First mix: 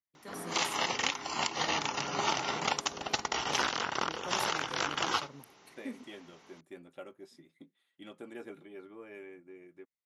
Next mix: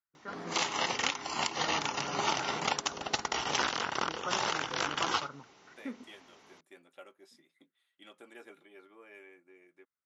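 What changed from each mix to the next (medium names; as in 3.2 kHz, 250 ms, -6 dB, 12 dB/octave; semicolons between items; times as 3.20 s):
first voice: add resonant low-pass 1.4 kHz, resonance Q 6.3; second voice: add high-pass 930 Hz 6 dB/octave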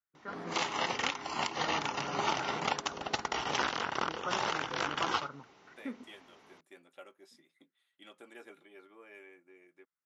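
background: add treble shelf 5.6 kHz -11 dB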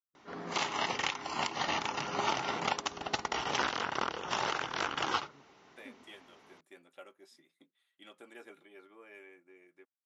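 first voice -12.0 dB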